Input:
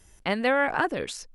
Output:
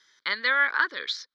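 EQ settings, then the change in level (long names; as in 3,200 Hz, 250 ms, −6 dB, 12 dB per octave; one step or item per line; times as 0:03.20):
high-pass filter 880 Hz 12 dB per octave
low-pass with resonance 3,800 Hz, resonance Q 2.5
phaser with its sweep stopped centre 2,700 Hz, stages 6
+4.5 dB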